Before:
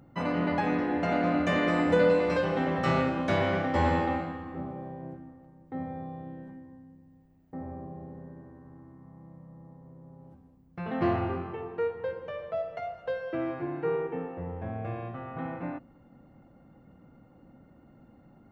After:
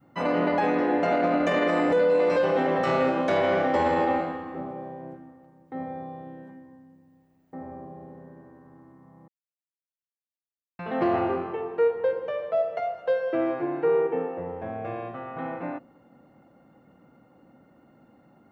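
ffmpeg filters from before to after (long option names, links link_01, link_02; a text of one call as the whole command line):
ffmpeg -i in.wav -filter_complex "[0:a]asplit=3[link_01][link_02][link_03];[link_01]atrim=end=9.28,asetpts=PTS-STARTPTS,afade=type=out:start_time=9.276:duration=0.004:curve=hsin[link_04];[link_02]atrim=start=9.28:end=10.79,asetpts=PTS-STARTPTS,volume=0[link_05];[link_03]atrim=start=10.79,asetpts=PTS-STARTPTS,afade=type=in:duration=0.004:curve=hsin[link_06];[link_04][link_05][link_06]concat=n=3:v=0:a=1,highpass=frequency=320:poles=1,adynamicequalizer=threshold=0.00891:dfrequency=490:dqfactor=0.85:tfrequency=490:tqfactor=0.85:attack=5:release=100:ratio=0.375:range=3.5:mode=boostabove:tftype=bell,alimiter=limit=-18.5dB:level=0:latency=1:release=22,volume=3.5dB" out.wav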